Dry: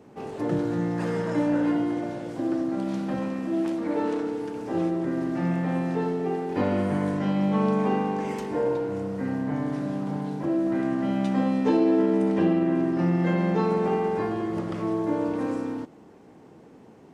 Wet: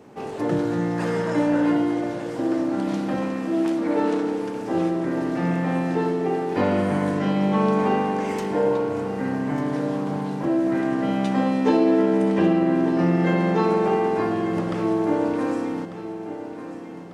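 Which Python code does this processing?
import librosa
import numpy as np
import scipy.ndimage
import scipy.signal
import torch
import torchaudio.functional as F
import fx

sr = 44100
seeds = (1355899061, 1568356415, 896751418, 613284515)

y = fx.low_shelf(x, sr, hz=360.0, db=-4.5)
y = fx.echo_feedback(y, sr, ms=1195, feedback_pct=51, wet_db=-13)
y = y * librosa.db_to_amplitude(5.5)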